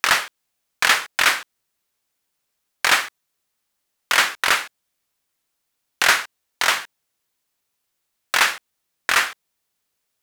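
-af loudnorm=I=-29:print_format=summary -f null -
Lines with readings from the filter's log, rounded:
Input Integrated:    -19.5 LUFS
Input True Peak:      -1.2 dBTP
Input LRA:             3.6 LU
Input Threshold:     -30.2 LUFS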